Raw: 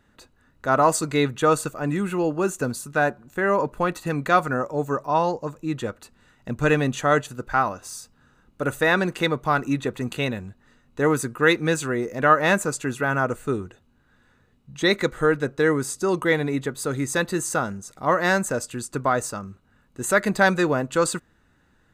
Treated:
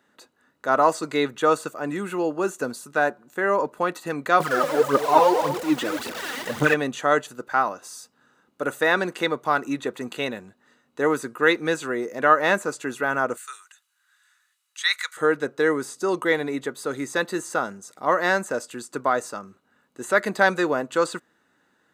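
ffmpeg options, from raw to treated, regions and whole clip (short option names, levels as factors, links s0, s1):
-filter_complex "[0:a]asettb=1/sr,asplit=3[s0][s1][s2];[s0]atrim=end=4.404[s3];[s1]atrim=start=4.4:end=6.74,asetpts=PTS-STARTPTS,afade=t=in:d=0.004:c=qsin,afade=t=out:st=2.336:d=0.004:c=qsin,aeval=exprs='val(0)+0.5*0.0447*sgn(val(0))':c=same,aphaser=in_gain=1:out_gain=1:delay=4.2:decay=0.71:speed=1.8:type=triangular,aecho=1:1:232:0.299,atrim=end_sample=103194[s4];[s2]atrim=start=6.736[s5];[s3][s4]acrossfade=d=0.004:c1=hsin:c2=qsin[s6];[s6][s5]acrossfade=d=0.004:c1=qsin:c2=hsin,asettb=1/sr,asplit=3[s7][s8][s9];[s7]atrim=end=13.374[s10];[s8]atrim=start=13.37:end=15.17,asetpts=PTS-STARTPTS,afade=t=in:d=0.004:c=qsin,afade=t=out:st=1.796:d=0.004:c=qsin,highpass=f=1300:w=0.5412,highpass=f=1300:w=1.3066,equalizer=f=9600:t=o:w=1.7:g=12.5[s11];[s9]atrim=start=15.166[s12];[s10][s11]acrossfade=d=0.004:c1=hsin:c2=qsin[s13];[s13][s12]acrossfade=d=0.004:c1=qsin:c2=hsin,highpass=280,acrossover=split=4400[s14][s15];[s15]acompressor=threshold=0.0141:ratio=4:attack=1:release=60[s16];[s14][s16]amix=inputs=2:normalize=0,equalizer=f=2500:t=o:w=0.24:g=-3"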